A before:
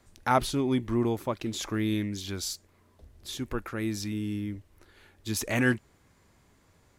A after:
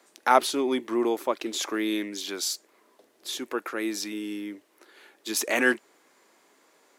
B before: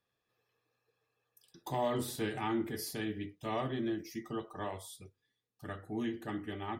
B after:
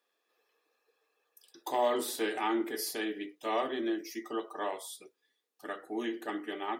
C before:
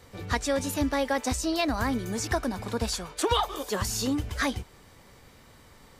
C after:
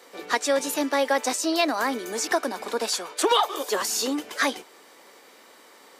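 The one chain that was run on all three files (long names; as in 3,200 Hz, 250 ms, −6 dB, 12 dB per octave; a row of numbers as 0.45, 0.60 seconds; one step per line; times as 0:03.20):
high-pass filter 310 Hz 24 dB per octave
level +5 dB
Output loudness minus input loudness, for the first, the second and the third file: +2.5, +3.5, +3.5 LU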